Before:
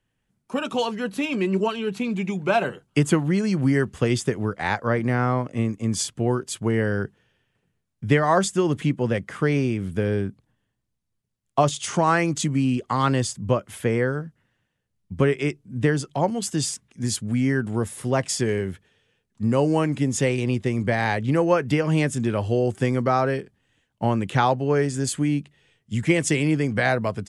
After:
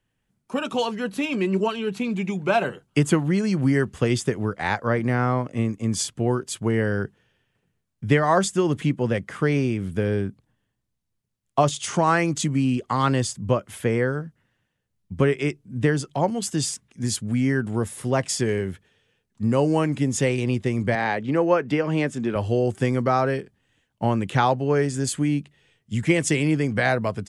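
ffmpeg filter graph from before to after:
ffmpeg -i in.wav -filter_complex "[0:a]asettb=1/sr,asplit=3[link_01][link_02][link_03];[link_01]atrim=end=20.954[link_04];[link_02]atrim=start=20.95:end=22.36,asetpts=PTS-STARTPTS,afade=type=in:duration=0.004:curve=qsin,afade=type=out:start_time=1.406:duration=0.004:curve=qsin,highpass=190,aemphasis=mode=reproduction:type=50fm[link_05];[link_03]atrim=start=22.356[link_06];[link_04][link_05]acrossfade=duration=0.004:curve1=hsin:curve2=qsin[link_07];[link_07][link_06]acrossfade=duration=0.004:curve1=qsin:curve2=hsin" out.wav

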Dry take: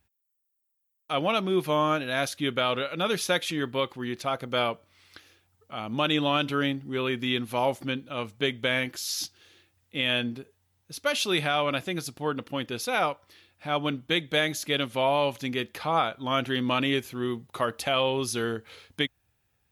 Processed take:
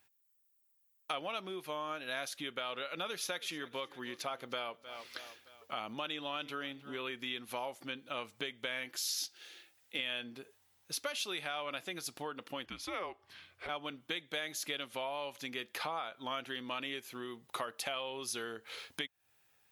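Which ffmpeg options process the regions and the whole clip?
ffmpeg -i in.wav -filter_complex "[0:a]asettb=1/sr,asplit=3[link_01][link_02][link_03];[link_01]atrim=end=2.804[link_04];[link_02]atrim=start=2.8:end=7.02,asetpts=PTS-STARTPTS,afade=type=in:duration=0.004:curve=qsin,afade=type=out:start_time=4.216:duration=0.004:curve=qsin,equalizer=frequency=8300:width=7.1:gain=-5.5,aecho=1:1:309|618|927:0.0794|0.0334|0.014,atrim=end_sample=186102[link_05];[link_03]atrim=start=7.016[link_06];[link_04][link_05]acrossfade=duration=0.004:curve1=hsin:curve2=qsin[link_07];[link_07][link_06]acrossfade=duration=0.004:curve1=qsin:curve2=hsin,asettb=1/sr,asplit=3[link_08][link_09][link_10];[link_08]atrim=end=9.024[link_11];[link_09]atrim=start=9.02:end=9.99,asetpts=PTS-STARTPTS,afade=type=in:duration=0.004:curve=qsin,afade=type=out:start_time=0.966:duration=0.004:curve=qsin,highpass=frequency=260:poles=1,bandreject=frequency=1100:width=5.4[link_12];[link_10]atrim=start=9.986[link_13];[link_11][link_12]acrossfade=duration=0.004:curve1=hsin:curve2=qsin[link_14];[link_14][link_13]acrossfade=duration=0.004:curve1=qsin:curve2=hsin,asettb=1/sr,asplit=3[link_15][link_16][link_17];[link_15]atrim=end=12.654[link_18];[link_16]atrim=start=12.65:end=13.69,asetpts=PTS-STARTPTS,afade=type=in:duration=0.004:curve=qsin,afade=type=out:start_time=1.036:duration=0.004:curve=qsin,lowpass=frequency=3700:poles=1,equalizer=frequency=62:width=0.56:gain=12.5,afreqshift=-180[link_19];[link_17]atrim=start=13.686[link_20];[link_18][link_19]acrossfade=duration=0.004:curve1=hsin:curve2=qsin[link_21];[link_21][link_20]acrossfade=duration=0.004:curve1=qsin:curve2=hsin,acompressor=threshold=-38dB:ratio=10,highpass=frequency=650:poles=1,volume=4.5dB" out.wav

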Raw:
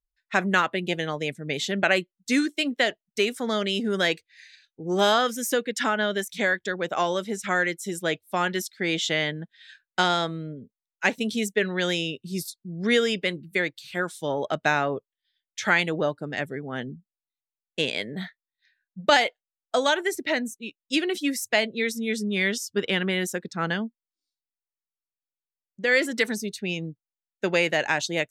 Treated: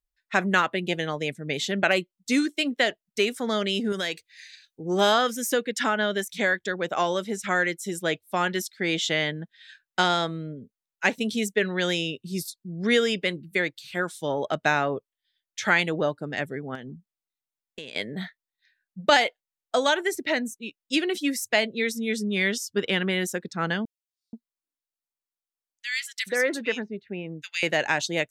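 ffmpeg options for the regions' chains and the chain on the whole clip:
ffmpeg -i in.wav -filter_complex "[0:a]asettb=1/sr,asplit=3[link_01][link_02][link_03];[link_01]atrim=end=1.914[link_04];[link_02]atrim=start=1.91:end=2.45,asetpts=PTS-STARTPTS,afade=type=in:duration=0.004:curve=qsin,afade=type=out:start_time=0.536:duration=0.004:curve=qsin,equalizer=frequency=1700:width_type=o:width=0.32:gain=-8,asoftclip=type=hard:threshold=-9.5dB[link_05];[link_03]atrim=start=2.446[link_06];[link_04][link_05]acrossfade=duration=0.004:curve1=hsin:curve2=qsin[link_07];[link_07][link_06]acrossfade=duration=0.004:curve1=qsin:curve2=hsin,asettb=1/sr,asplit=3[link_08][link_09][link_10];[link_08]atrim=end=3.924[link_11];[link_09]atrim=start=3.92:end=4.82,asetpts=PTS-STARTPTS,afade=type=in:duration=0.004:curve=qsin,afade=type=out:start_time=0.896:duration=0.004:curve=qsin,highshelf=frequency=3200:gain=8,acompressor=threshold=-30dB:ratio=2:attack=3.2:release=140:knee=1:detection=peak[link_12];[link_10]atrim=start=4.816[link_13];[link_11][link_12]acrossfade=duration=0.004:curve1=hsin:curve2=qsin[link_14];[link_14][link_13]acrossfade=duration=0.004:curve1=qsin:curve2=hsin,asettb=1/sr,asplit=3[link_15][link_16][link_17];[link_15]atrim=end=16.754[link_18];[link_16]atrim=start=16.75:end=17.96,asetpts=PTS-STARTPTS,afade=type=in:duration=0.004:curve=qsin,afade=type=out:start_time=1.206:duration=0.004:curve=qsin,acompressor=threshold=-35dB:ratio=6:attack=3.2:release=140:knee=1:detection=peak,aeval=exprs='0.0668*(abs(mod(val(0)/0.0668+3,4)-2)-1)':channel_layout=same[link_19];[link_17]atrim=start=17.956[link_20];[link_18][link_19]acrossfade=duration=0.004:curve1=hsin:curve2=qsin[link_21];[link_21][link_20]acrossfade=duration=0.004:curve1=qsin:curve2=hsin,asettb=1/sr,asplit=3[link_22][link_23][link_24];[link_22]atrim=end=23.854[link_25];[link_23]atrim=start=23.85:end=27.63,asetpts=PTS-STARTPTS,afade=type=in:duration=0.004:curve=qsin,afade=type=out:start_time=3.776:duration=0.004:curve=qsin,lowshelf=frequency=190:gain=-8.5,acrossover=split=2100[link_26][link_27];[link_26]adelay=480[link_28];[link_28][link_27]amix=inputs=2:normalize=0,atrim=end_sample=166698[link_29];[link_24]atrim=start=27.626[link_30];[link_25][link_29]acrossfade=duration=0.004:curve1=hsin:curve2=qsin[link_31];[link_31][link_30]acrossfade=duration=0.004:curve1=qsin:curve2=hsin" out.wav

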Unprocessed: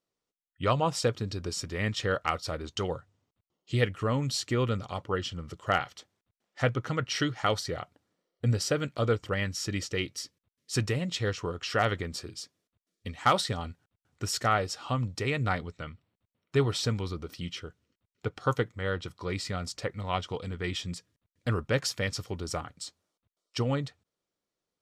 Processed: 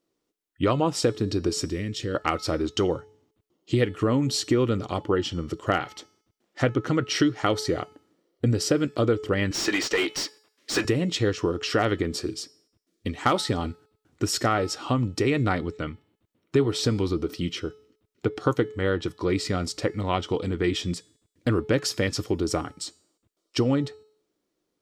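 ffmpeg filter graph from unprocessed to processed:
ffmpeg -i in.wav -filter_complex "[0:a]asettb=1/sr,asplit=3[link_01][link_02][link_03];[link_01]atrim=end=1.704[link_04];[link_02]atrim=start=1.7:end=2.15,asetpts=PTS-STARTPTS,afade=type=in:duration=0.004:curve=qsin,afade=type=out:start_time=0.446:duration=0.004:curve=qsin,equalizer=frequency=1000:width=0.75:gain=-14,acompressor=threshold=-34dB:ratio=4:attack=3.2:release=140:knee=1:detection=peak[link_05];[link_03]atrim=start=2.146[link_06];[link_04][link_05]acrossfade=duration=0.004:curve1=hsin:curve2=qsin[link_07];[link_07][link_06]acrossfade=duration=0.004:curve1=qsin:curve2=hsin,asettb=1/sr,asplit=3[link_08][link_09][link_10];[link_08]atrim=end=9.514[link_11];[link_09]atrim=start=9.51:end=10.85,asetpts=PTS-STARTPTS,afade=type=in:duration=0.004:curve=qsin,afade=type=out:start_time=1.336:duration=0.004:curve=qsin,highpass=frequency=1200:poles=1,asplit=2[link_12][link_13];[link_13]highpass=frequency=720:poles=1,volume=27dB,asoftclip=type=tanh:threshold=-17dB[link_14];[link_12][link_14]amix=inputs=2:normalize=0,lowpass=frequency=1700:poles=1,volume=-6dB[link_15];[link_10]atrim=start=10.846[link_16];[link_11][link_15]acrossfade=duration=0.004:curve1=hsin:curve2=qsin[link_17];[link_17][link_16]acrossfade=duration=0.004:curve1=qsin:curve2=hsin,equalizer=frequency=320:width=1.7:gain=12,bandreject=frequency=429.9:width_type=h:width=4,bandreject=frequency=859.8:width_type=h:width=4,bandreject=frequency=1289.7:width_type=h:width=4,bandreject=frequency=1719.6:width_type=h:width=4,bandreject=frequency=2149.5:width_type=h:width=4,bandreject=frequency=2579.4:width_type=h:width=4,bandreject=frequency=3009.3:width_type=h:width=4,bandreject=frequency=3439.2:width_type=h:width=4,bandreject=frequency=3869.1:width_type=h:width=4,bandreject=frequency=4299:width_type=h:width=4,bandreject=frequency=4728.9:width_type=h:width=4,bandreject=frequency=5158.8:width_type=h:width=4,bandreject=frequency=5588.7:width_type=h:width=4,bandreject=frequency=6018.6:width_type=h:width=4,bandreject=frequency=6448.5:width_type=h:width=4,bandreject=frequency=6878.4:width_type=h:width=4,bandreject=frequency=7308.3:width_type=h:width=4,bandreject=frequency=7738.2:width_type=h:width=4,bandreject=frequency=8168.1:width_type=h:width=4,bandreject=frequency=8598:width_type=h:width=4,bandreject=frequency=9027.9:width_type=h:width=4,bandreject=frequency=9457.8:width_type=h:width=4,bandreject=frequency=9887.7:width_type=h:width=4,bandreject=frequency=10317.6:width_type=h:width=4,bandreject=frequency=10747.5:width_type=h:width=4,bandreject=frequency=11177.4:width_type=h:width=4,bandreject=frequency=11607.3:width_type=h:width=4,bandreject=frequency=12037.2:width_type=h:width=4,bandreject=frequency=12467.1:width_type=h:width=4,bandreject=frequency=12897:width_type=h:width=4,bandreject=frequency=13326.9:width_type=h:width=4,bandreject=frequency=13756.8:width_type=h:width=4,bandreject=frequency=14186.7:width_type=h:width=4,bandreject=frequency=14616.6:width_type=h:width=4,bandreject=frequency=15046.5:width_type=h:width=4,bandreject=frequency=15476.4:width_type=h:width=4,bandreject=frequency=15906.3:width_type=h:width=4,acompressor=threshold=-26dB:ratio=2.5,volume=5.5dB" out.wav

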